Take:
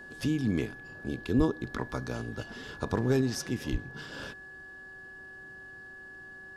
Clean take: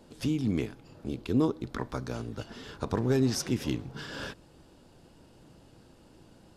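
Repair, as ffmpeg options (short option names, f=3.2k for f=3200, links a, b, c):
-filter_complex "[0:a]bandreject=f=381.3:t=h:w=4,bandreject=f=762.6:t=h:w=4,bandreject=f=1.1439k:t=h:w=4,bandreject=f=1.5252k:t=h:w=4,bandreject=f=1.7k:w=30,asplit=3[a][b][c];[a]afade=t=out:st=1.37:d=0.02[d];[b]highpass=f=140:w=0.5412,highpass=f=140:w=1.3066,afade=t=in:st=1.37:d=0.02,afade=t=out:st=1.49:d=0.02[e];[c]afade=t=in:st=1.49:d=0.02[f];[d][e][f]amix=inputs=3:normalize=0,asplit=3[g][h][i];[g]afade=t=out:st=3.71:d=0.02[j];[h]highpass=f=140:w=0.5412,highpass=f=140:w=1.3066,afade=t=in:st=3.71:d=0.02,afade=t=out:st=3.83:d=0.02[k];[i]afade=t=in:st=3.83:d=0.02[l];[j][k][l]amix=inputs=3:normalize=0,asetnsamples=n=441:p=0,asendcmd='3.21 volume volume 3.5dB',volume=0dB"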